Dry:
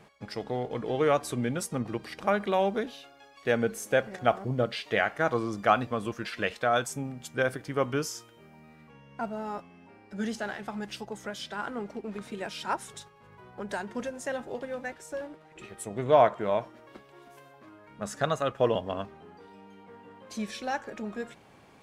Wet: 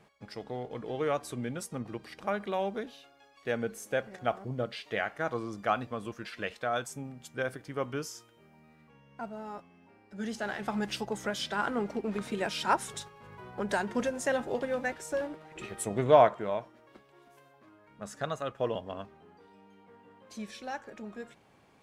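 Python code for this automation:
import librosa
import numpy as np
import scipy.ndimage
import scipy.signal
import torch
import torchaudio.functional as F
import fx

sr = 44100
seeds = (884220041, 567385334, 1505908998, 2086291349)

y = fx.gain(x, sr, db=fx.line((10.14, -6.0), (10.71, 4.0), (15.92, 4.0), (16.62, -6.5)))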